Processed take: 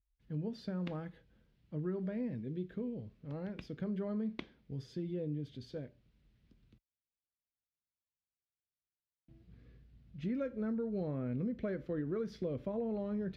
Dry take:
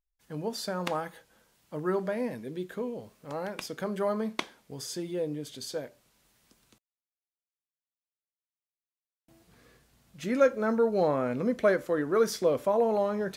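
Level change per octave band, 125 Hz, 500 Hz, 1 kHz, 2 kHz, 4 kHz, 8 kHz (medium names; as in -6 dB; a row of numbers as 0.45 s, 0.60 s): +0.5 dB, -13.5 dB, -20.0 dB, -16.5 dB, -16.5 dB, under -25 dB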